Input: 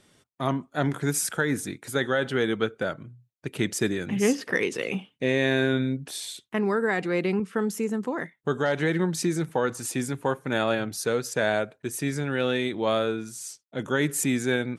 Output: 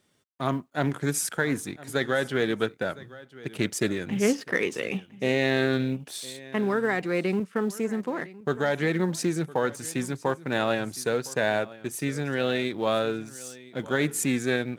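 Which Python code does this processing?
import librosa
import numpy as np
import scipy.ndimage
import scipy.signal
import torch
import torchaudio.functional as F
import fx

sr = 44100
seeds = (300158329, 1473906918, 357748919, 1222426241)

y = fx.law_mismatch(x, sr, coded='A')
y = scipy.signal.sosfilt(scipy.signal.butter(2, 55.0, 'highpass', fs=sr, output='sos'), y)
y = y + 10.0 ** (-19.5 / 20.0) * np.pad(y, (int(1010 * sr / 1000.0), 0))[:len(y)]
y = fx.doppler_dist(y, sr, depth_ms=0.12)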